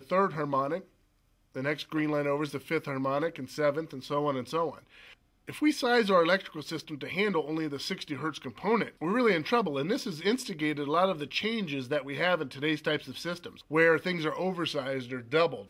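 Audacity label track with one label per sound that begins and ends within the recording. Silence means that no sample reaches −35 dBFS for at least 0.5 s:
1.560000	4.780000	sound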